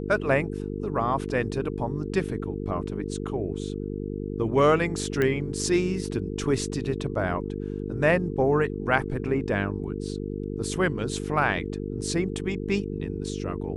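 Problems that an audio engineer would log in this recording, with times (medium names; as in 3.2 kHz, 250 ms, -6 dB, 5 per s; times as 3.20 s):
buzz 50 Hz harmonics 9 -32 dBFS
5.22 s: pop -13 dBFS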